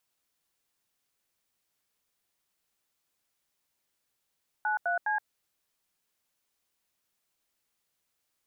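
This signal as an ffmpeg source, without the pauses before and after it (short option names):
-f lavfi -i "aevalsrc='0.0376*clip(min(mod(t,0.206),0.122-mod(t,0.206))/0.002,0,1)*(eq(floor(t/0.206),0)*(sin(2*PI*852*mod(t,0.206))+sin(2*PI*1477*mod(t,0.206)))+eq(floor(t/0.206),1)*(sin(2*PI*697*mod(t,0.206))+sin(2*PI*1477*mod(t,0.206)))+eq(floor(t/0.206),2)*(sin(2*PI*852*mod(t,0.206))+sin(2*PI*1633*mod(t,0.206))))':d=0.618:s=44100"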